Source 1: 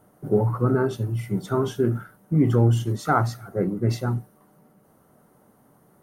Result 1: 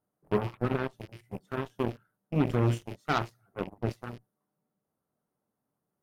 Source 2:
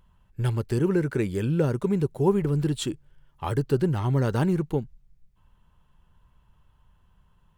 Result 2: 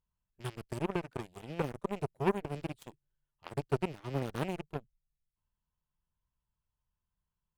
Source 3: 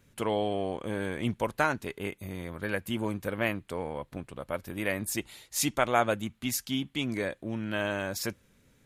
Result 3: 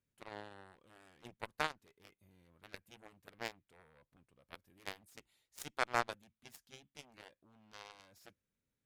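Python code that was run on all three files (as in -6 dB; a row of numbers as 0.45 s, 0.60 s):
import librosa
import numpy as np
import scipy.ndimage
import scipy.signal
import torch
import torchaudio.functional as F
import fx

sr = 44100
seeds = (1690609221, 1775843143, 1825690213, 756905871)

y = fx.rattle_buzz(x, sr, strikes_db=-25.0, level_db=-28.0)
y = fx.cheby_harmonics(y, sr, harmonics=(7,), levels_db=(-16,), full_scale_db=-7.0)
y = F.gain(torch.from_numpy(y), -7.0).numpy()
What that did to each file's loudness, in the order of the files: -8.5 LU, -12.0 LU, -11.5 LU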